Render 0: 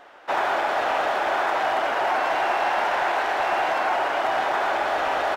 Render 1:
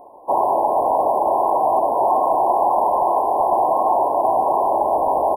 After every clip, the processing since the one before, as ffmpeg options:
-af "afftfilt=real='re*(1-between(b*sr/4096,1100,9200))':imag='im*(1-between(b*sr/4096,1100,9200))':win_size=4096:overlap=0.75,volume=2.24"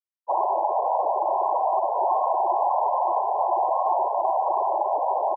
-filter_complex "[0:a]crystalizer=i=8:c=0,acrossover=split=2600[s0][s1];[s1]acompressor=threshold=0.01:ratio=4:attack=1:release=60[s2];[s0][s2]amix=inputs=2:normalize=0,afftfilt=real='re*gte(hypot(re,im),0.282)':imag='im*gte(hypot(re,im),0.282)':win_size=1024:overlap=0.75,volume=0.398"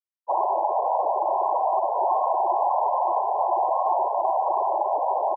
-af anull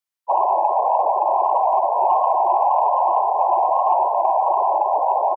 -filter_complex "[0:a]asplit=2[s0][s1];[s1]adelay=19,volume=0.2[s2];[s0][s2]amix=inputs=2:normalize=0,acrossover=split=510|590[s3][s4][s5];[s5]acontrast=88[s6];[s3][s4][s6]amix=inputs=3:normalize=0"

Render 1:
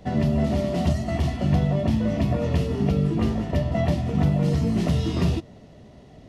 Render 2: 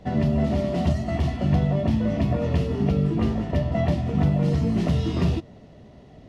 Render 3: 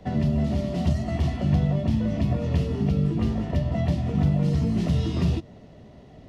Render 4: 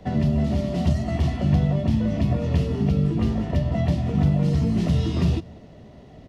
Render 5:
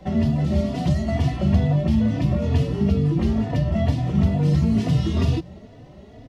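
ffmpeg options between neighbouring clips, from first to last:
-af "highshelf=f=6700:g=-9.5"
-filter_complex "[0:a]acrossover=split=240|3000[s0][s1][s2];[s1]acompressor=threshold=0.0282:ratio=6[s3];[s0][s3][s2]amix=inputs=3:normalize=0"
-filter_complex "[0:a]asplit=2[s0][s1];[s1]adelay=186.6,volume=0.0562,highshelf=f=4000:g=-4.2[s2];[s0][s2]amix=inputs=2:normalize=0,volume=1.26"
-filter_complex "[0:a]asplit=2[s0][s1];[s1]adelay=3.4,afreqshift=2.2[s2];[s0][s2]amix=inputs=2:normalize=1,volume=1.68"

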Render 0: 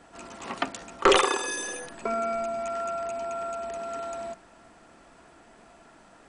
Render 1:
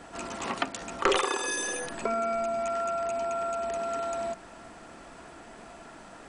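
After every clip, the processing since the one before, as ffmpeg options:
-af "acompressor=threshold=0.0126:ratio=2,volume=2.11"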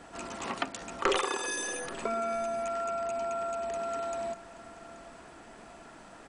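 -af "aecho=1:1:830:0.119,volume=0.708"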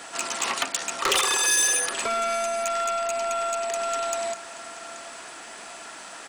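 -filter_complex "[0:a]asplit=2[s0][s1];[s1]highpass=f=720:p=1,volume=11.2,asoftclip=type=tanh:threshold=0.282[s2];[s0][s2]amix=inputs=2:normalize=0,lowpass=f=4200:p=1,volume=0.501,crystalizer=i=5.5:c=0,volume=0.447"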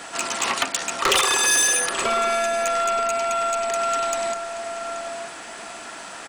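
-filter_complex "[0:a]bass=f=250:g=3,treble=f=4000:g=-2,asplit=2[s0][s1];[s1]adelay=932.9,volume=0.398,highshelf=f=4000:g=-21[s2];[s0][s2]amix=inputs=2:normalize=0,volume=1.58"

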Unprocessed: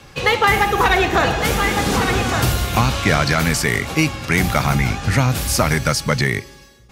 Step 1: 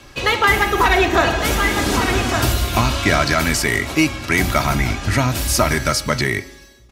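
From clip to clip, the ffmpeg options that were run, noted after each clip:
-af "aecho=1:1:3.1:0.48,bandreject=f=87.97:t=h:w=4,bandreject=f=175.94:t=h:w=4,bandreject=f=263.91:t=h:w=4,bandreject=f=351.88:t=h:w=4,bandreject=f=439.85:t=h:w=4,bandreject=f=527.82:t=h:w=4,bandreject=f=615.79:t=h:w=4,bandreject=f=703.76:t=h:w=4,bandreject=f=791.73:t=h:w=4,bandreject=f=879.7:t=h:w=4,bandreject=f=967.67:t=h:w=4,bandreject=f=1055.64:t=h:w=4,bandreject=f=1143.61:t=h:w=4,bandreject=f=1231.58:t=h:w=4,bandreject=f=1319.55:t=h:w=4,bandreject=f=1407.52:t=h:w=4,bandreject=f=1495.49:t=h:w=4,bandreject=f=1583.46:t=h:w=4,bandreject=f=1671.43:t=h:w=4,bandreject=f=1759.4:t=h:w=4,bandreject=f=1847.37:t=h:w=4,bandreject=f=1935.34:t=h:w=4,bandreject=f=2023.31:t=h:w=4,bandreject=f=2111.28:t=h:w=4,bandreject=f=2199.25:t=h:w=4,bandreject=f=2287.22:t=h:w=4,bandreject=f=2375.19:t=h:w=4"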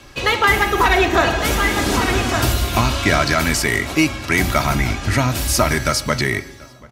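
-filter_complex "[0:a]asplit=2[s0][s1];[s1]adelay=734,lowpass=f=2000:p=1,volume=0.0708,asplit=2[s2][s3];[s3]adelay=734,lowpass=f=2000:p=1,volume=0.53,asplit=2[s4][s5];[s5]adelay=734,lowpass=f=2000:p=1,volume=0.53,asplit=2[s6][s7];[s7]adelay=734,lowpass=f=2000:p=1,volume=0.53[s8];[s0][s2][s4][s6][s8]amix=inputs=5:normalize=0"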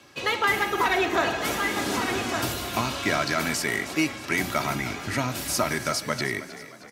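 -filter_complex "[0:a]highpass=150,asplit=6[s0][s1][s2][s3][s4][s5];[s1]adelay=313,afreqshift=38,volume=0.178[s6];[s2]adelay=626,afreqshift=76,volume=0.0912[s7];[s3]adelay=939,afreqshift=114,volume=0.0462[s8];[s4]adelay=1252,afreqshift=152,volume=0.0237[s9];[s5]adelay=1565,afreqshift=190,volume=0.012[s10];[s0][s6][s7][s8][s9][s10]amix=inputs=6:normalize=0,volume=0.398"

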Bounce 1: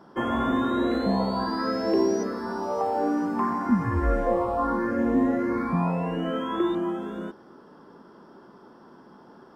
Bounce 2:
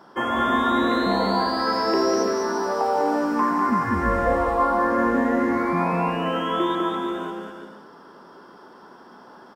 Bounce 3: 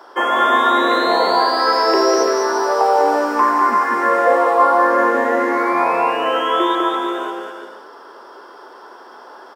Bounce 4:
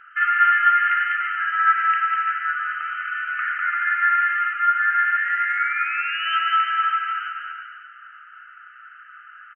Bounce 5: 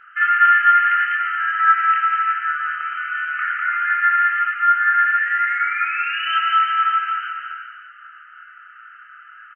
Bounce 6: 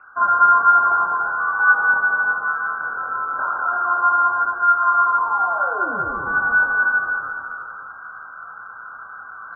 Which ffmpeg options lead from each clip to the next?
-filter_complex "[0:a]lowshelf=f=440:g=-11.5,asplit=2[s0][s1];[s1]aecho=0:1:200|340|438|506.6|554.6:0.631|0.398|0.251|0.158|0.1[s2];[s0][s2]amix=inputs=2:normalize=0,volume=2.11"
-af "highpass=f=370:w=0.5412,highpass=f=370:w=1.3066,volume=2.51"
-af "afftfilt=real='re*between(b*sr/4096,1200,3100)':imag='im*between(b*sr/4096,1200,3100)':win_size=4096:overlap=0.75,aecho=1:1:562:0.141,volume=1.33"
-filter_complex "[0:a]asplit=2[s0][s1];[s1]adelay=25,volume=0.668[s2];[s0][s2]amix=inputs=2:normalize=0"
-af "lowpass=f=2400:t=q:w=0.5098,lowpass=f=2400:t=q:w=0.6013,lowpass=f=2400:t=q:w=0.9,lowpass=f=2400:t=q:w=2.563,afreqshift=-2800,areverse,acompressor=mode=upward:threshold=0.0398:ratio=2.5,areverse"

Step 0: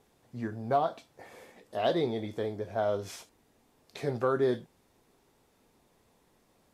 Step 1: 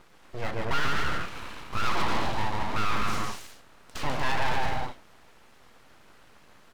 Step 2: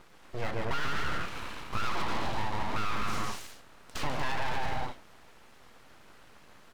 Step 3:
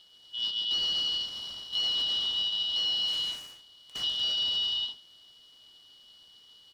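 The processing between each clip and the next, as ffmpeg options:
-filter_complex "[0:a]aecho=1:1:140|238|306.6|354.6|388.2:0.631|0.398|0.251|0.158|0.1,asplit=2[s0][s1];[s1]highpass=f=720:p=1,volume=15.8,asoftclip=type=tanh:threshold=0.188[s2];[s0][s2]amix=inputs=2:normalize=0,lowpass=f=1600:p=1,volume=0.501,aeval=exprs='abs(val(0))':c=same"
-af "acompressor=threshold=0.0562:ratio=6"
-af "afftfilt=real='real(if(lt(b,272),68*(eq(floor(b/68),0)*2+eq(floor(b/68),1)*3+eq(floor(b/68),2)*0+eq(floor(b/68),3)*1)+mod(b,68),b),0)':imag='imag(if(lt(b,272),68*(eq(floor(b/68),0)*2+eq(floor(b/68),1)*3+eq(floor(b/68),2)*0+eq(floor(b/68),3)*1)+mod(b,68),b),0)':win_size=2048:overlap=0.75,volume=0.631"

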